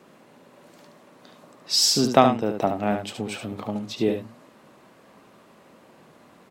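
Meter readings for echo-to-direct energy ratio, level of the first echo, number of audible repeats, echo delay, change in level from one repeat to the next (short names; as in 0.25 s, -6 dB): -6.5 dB, -6.5 dB, 1, 72 ms, no steady repeat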